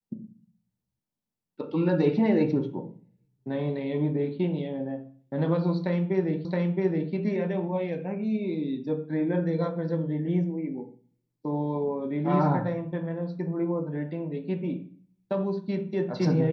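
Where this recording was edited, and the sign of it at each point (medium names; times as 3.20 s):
6.45 s: repeat of the last 0.67 s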